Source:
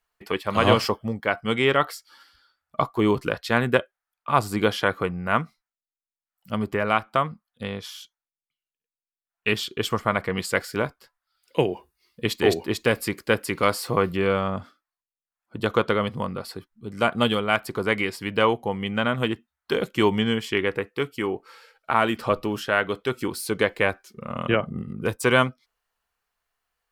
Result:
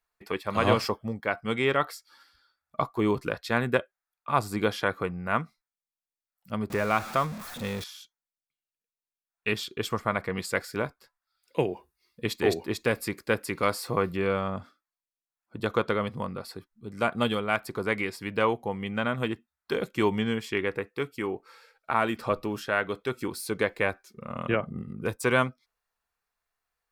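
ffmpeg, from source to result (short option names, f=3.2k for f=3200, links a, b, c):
-filter_complex "[0:a]asettb=1/sr,asplit=3[a][b][c];[a]atrim=end=6.704[d];[b]atrim=start=6.7:end=7.84,asetpts=PTS-STARTPTS,afade=t=in:d=0.004:c=qsin,afade=t=out:st=1.136:d=0.004:c=qsin,aeval=exprs='val(0)+0.5*0.0355*sgn(val(0))':c=same[e];[c]atrim=start=7.836[f];[d][e]acrossfade=d=0.004:c1=hsin:c2=qsin[g];[g][f]acrossfade=d=0.004:c1=qsin:c2=hsin,bandreject=f=3k:w=9.8,volume=-4.5dB"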